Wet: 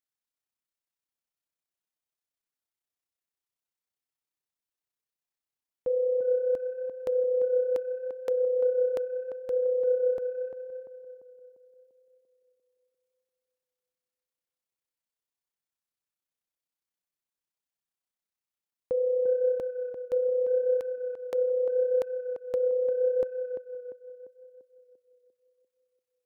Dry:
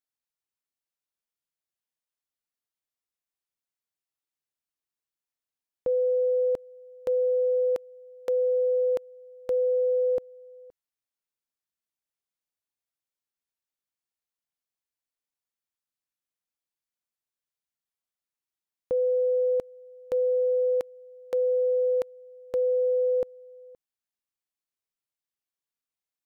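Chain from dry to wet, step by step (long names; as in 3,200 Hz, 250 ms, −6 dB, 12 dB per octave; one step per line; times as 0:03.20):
amplitude modulation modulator 32 Hz, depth 30%
on a send: tape delay 345 ms, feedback 58%, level −5 dB, low-pass 1,000 Hz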